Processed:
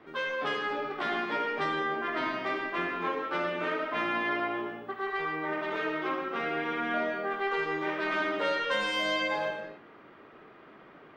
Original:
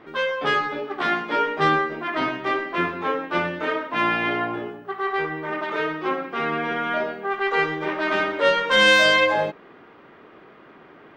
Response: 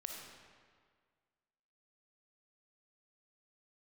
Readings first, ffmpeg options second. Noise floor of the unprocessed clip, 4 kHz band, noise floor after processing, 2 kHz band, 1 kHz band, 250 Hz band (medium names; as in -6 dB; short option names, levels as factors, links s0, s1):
-49 dBFS, -11.0 dB, -53 dBFS, -9.0 dB, -8.0 dB, -7.0 dB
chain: -filter_complex "[0:a]acrossover=split=150|1000[s0][s1][s2];[s0]acompressor=threshold=0.00224:ratio=4[s3];[s1]acompressor=threshold=0.0447:ratio=4[s4];[s2]acompressor=threshold=0.0562:ratio=4[s5];[s3][s4][s5]amix=inputs=3:normalize=0[s6];[1:a]atrim=start_sample=2205,afade=t=out:st=0.34:d=0.01,atrim=end_sample=15435[s7];[s6][s7]afir=irnorm=-1:irlink=0,volume=0.75"